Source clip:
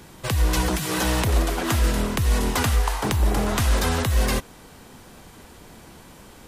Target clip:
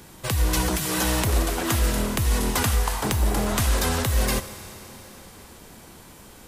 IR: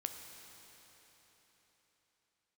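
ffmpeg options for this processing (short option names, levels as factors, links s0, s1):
-filter_complex "[0:a]asplit=2[s0][s1];[s1]highshelf=f=5600:g=11.5[s2];[1:a]atrim=start_sample=2205[s3];[s2][s3]afir=irnorm=-1:irlink=0,volume=0.841[s4];[s0][s4]amix=inputs=2:normalize=0,volume=0.501"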